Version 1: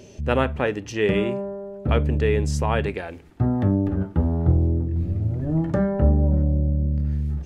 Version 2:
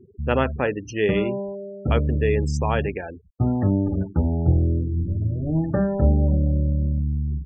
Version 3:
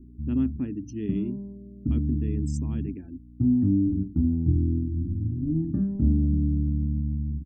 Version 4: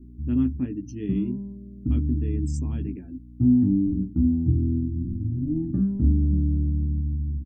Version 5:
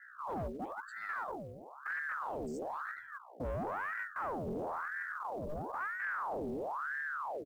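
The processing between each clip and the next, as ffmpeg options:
-af "afftfilt=real='re*gte(hypot(re,im),0.0282)':imag='im*gte(hypot(re,im),0.0282)':win_size=1024:overlap=0.75"
-af "aeval=exprs='val(0)+0.00708*(sin(2*PI*60*n/s)+sin(2*PI*2*60*n/s)/2+sin(2*PI*3*60*n/s)/3+sin(2*PI*4*60*n/s)/4+sin(2*PI*5*60*n/s)/5)':c=same,firequalizer=gain_entry='entry(180,0);entry(270,10);entry(490,-27);entry(1100,-22);entry(1600,-24);entry(8300,4)':delay=0.05:min_phase=1,volume=-4.5dB"
-filter_complex "[0:a]asplit=2[a][b];[b]adelay=16,volume=-5.5dB[c];[a][c]amix=inputs=2:normalize=0"
-af "asoftclip=type=tanh:threshold=-25dB,acrusher=bits=8:mode=log:mix=0:aa=0.000001,aeval=exprs='val(0)*sin(2*PI*1000*n/s+1000*0.7/1*sin(2*PI*1*n/s))':c=same,volume=-7.5dB"

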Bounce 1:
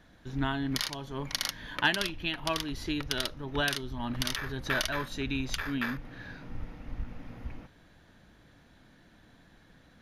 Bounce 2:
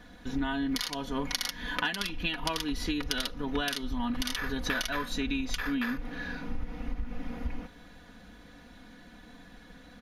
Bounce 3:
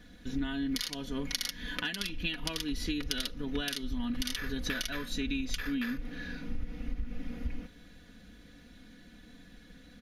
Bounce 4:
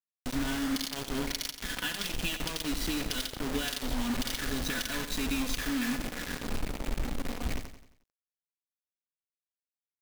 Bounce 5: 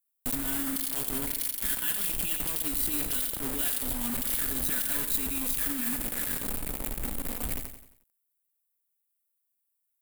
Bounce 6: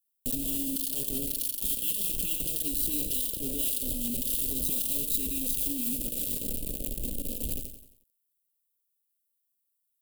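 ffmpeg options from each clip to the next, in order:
-af "aecho=1:1:4.1:0.76,acompressor=threshold=-32dB:ratio=12,volume=5dB"
-af "equalizer=f=910:w=1.2:g=-12,volume=-1dB"
-filter_complex "[0:a]asplit=2[a][b];[b]alimiter=limit=-24dB:level=0:latency=1:release=81,volume=0dB[c];[a][c]amix=inputs=2:normalize=0,acrusher=bits=4:mix=0:aa=0.000001,aecho=1:1:89|178|267|356|445:0.299|0.134|0.0605|0.0272|0.0122,volume=-5dB"
-af "alimiter=level_in=4.5dB:limit=-24dB:level=0:latency=1:release=17,volume=-4.5dB,aexciter=amount=3.2:drive=9.7:freq=8.1k"
-af "asuperstop=centerf=1300:order=12:qfactor=0.62"

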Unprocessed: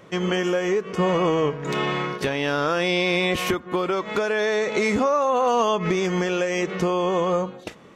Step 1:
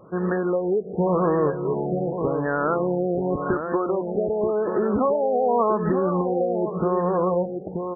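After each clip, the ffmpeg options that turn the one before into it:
-filter_complex "[0:a]asplit=2[a][b];[b]adelay=932.9,volume=-6dB,highshelf=f=4k:g=-21[c];[a][c]amix=inputs=2:normalize=0,afftfilt=real='re*lt(b*sr/1024,810*pow(1900/810,0.5+0.5*sin(2*PI*0.89*pts/sr)))':imag='im*lt(b*sr/1024,810*pow(1900/810,0.5+0.5*sin(2*PI*0.89*pts/sr)))':win_size=1024:overlap=0.75"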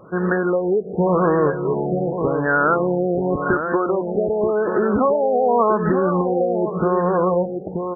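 -af "equalizer=f=1.5k:t=o:w=0.29:g=9,volume=3.5dB"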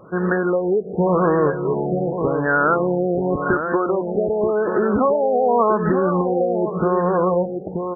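-af anull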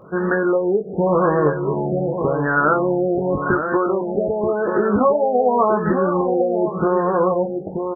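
-filter_complex "[0:a]asplit=2[a][b];[b]adelay=20,volume=-6dB[c];[a][c]amix=inputs=2:normalize=0"

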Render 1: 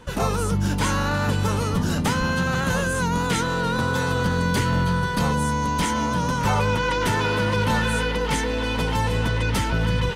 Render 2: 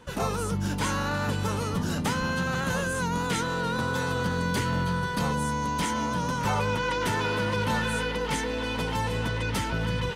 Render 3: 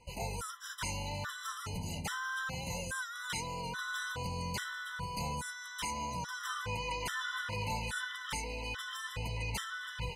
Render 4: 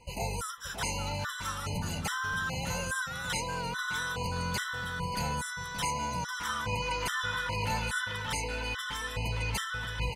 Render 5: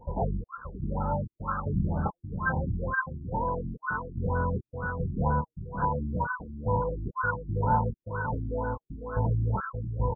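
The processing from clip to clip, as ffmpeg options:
-af "lowshelf=f=62:g=-8.5,volume=-4.5dB"
-af "equalizer=f=290:w=0.55:g=-14.5,afftfilt=real='re*gt(sin(2*PI*1.2*pts/sr)*(1-2*mod(floor(b*sr/1024/1000),2)),0)':imag='im*gt(sin(2*PI*1.2*pts/sr)*(1-2*mod(floor(b*sr/1024/1000),2)),0)':win_size=1024:overlap=0.75,volume=-2.5dB"
-filter_complex "[0:a]asplit=2[a][b];[b]adelay=577.3,volume=-7dB,highshelf=f=4k:g=-13[c];[a][c]amix=inputs=2:normalize=0,volume=4.5dB"
-filter_complex "[0:a]asplit=2[a][b];[b]adelay=26,volume=-7dB[c];[a][c]amix=inputs=2:normalize=0,afftfilt=real='re*lt(b*sr/1024,350*pow(1700/350,0.5+0.5*sin(2*PI*2.1*pts/sr)))':imag='im*lt(b*sr/1024,350*pow(1700/350,0.5+0.5*sin(2*PI*2.1*pts/sr)))':win_size=1024:overlap=0.75,volume=7dB"

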